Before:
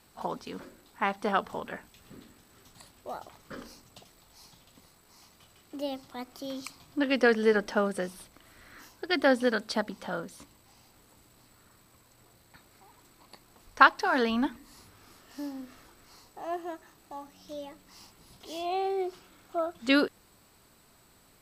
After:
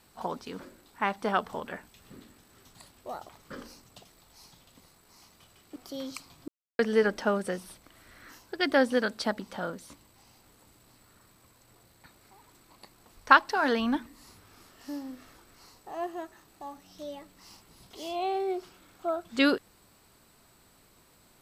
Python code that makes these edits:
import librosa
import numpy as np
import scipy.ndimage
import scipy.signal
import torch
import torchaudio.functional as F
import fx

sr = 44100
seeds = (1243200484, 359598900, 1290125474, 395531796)

y = fx.edit(x, sr, fx.cut(start_s=5.76, length_s=0.5),
    fx.silence(start_s=6.98, length_s=0.31), tone=tone)